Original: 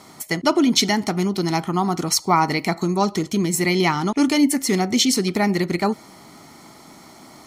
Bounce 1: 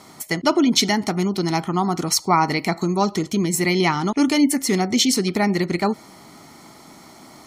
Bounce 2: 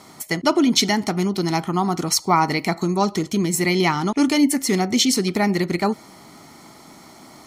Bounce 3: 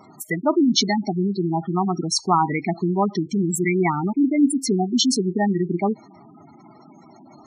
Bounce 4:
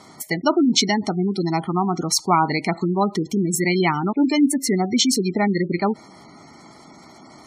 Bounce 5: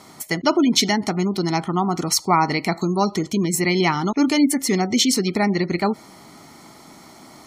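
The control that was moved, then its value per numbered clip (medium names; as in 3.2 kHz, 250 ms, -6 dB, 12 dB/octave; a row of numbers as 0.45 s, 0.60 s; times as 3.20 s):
spectral gate, under each frame's peak: -45 dB, -60 dB, -10 dB, -20 dB, -35 dB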